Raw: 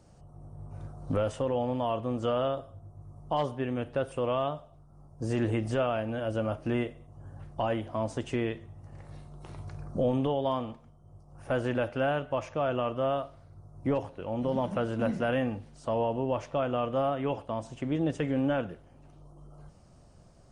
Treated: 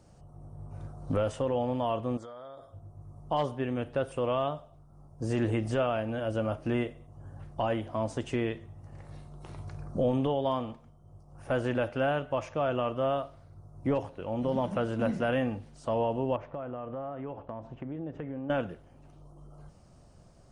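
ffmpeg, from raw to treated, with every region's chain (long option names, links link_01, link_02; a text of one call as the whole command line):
ffmpeg -i in.wav -filter_complex "[0:a]asettb=1/sr,asplit=3[link_01][link_02][link_03];[link_01]atrim=end=2.174[link_04];[link_02]atrim=start=2.17:end=2.73,asetpts=PTS-STARTPTS,afade=type=in:duration=0.004:curve=qsin,afade=type=out:start_time=0.556:duration=0.004:curve=qsin,asuperstop=centerf=2700:order=20:qfactor=3.3,lowshelf=frequency=360:gain=-10.5,acompressor=threshold=-41dB:ratio=10:attack=3.2:release=140:knee=1:detection=peak[link_05];[link_03]atrim=start=2.726[link_06];[link_04][link_05]acrossfade=duration=0.004:curve1=hsin:curve2=qsin[link_07];[link_07][link_06]acrossfade=duration=0.004:curve1=qsin:curve2=hsin,asettb=1/sr,asplit=3[link_08][link_09][link_10];[link_08]atrim=end=16.364[link_11];[link_09]atrim=start=16.36:end=18.5,asetpts=PTS-STARTPTS,afade=type=in:duration=0.004:curve=qsin,afade=type=out:start_time=2.136:duration=0.004:curve=qsin,lowpass=1600,acompressor=threshold=-35dB:ratio=4:attack=3.2:release=140:knee=1:detection=peak[link_12];[link_10]atrim=start=18.496[link_13];[link_11][link_12]acrossfade=duration=0.004:curve1=hsin:curve2=qsin[link_14];[link_14][link_13]acrossfade=duration=0.004:curve1=qsin:curve2=hsin" out.wav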